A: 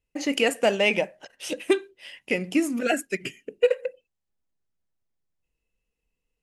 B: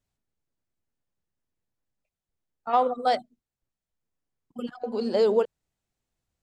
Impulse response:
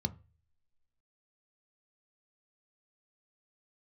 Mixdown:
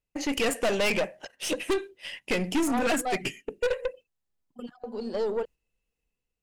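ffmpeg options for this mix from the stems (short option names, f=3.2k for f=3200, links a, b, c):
-filter_complex "[0:a]dynaudnorm=f=120:g=7:m=6dB,volume=0dB[a];[1:a]volume=-4.5dB[b];[a][b]amix=inputs=2:normalize=0,agate=range=-6dB:threshold=-41dB:ratio=16:detection=peak,aeval=exprs='(tanh(12.6*val(0)+0.35)-tanh(0.35))/12.6':c=same"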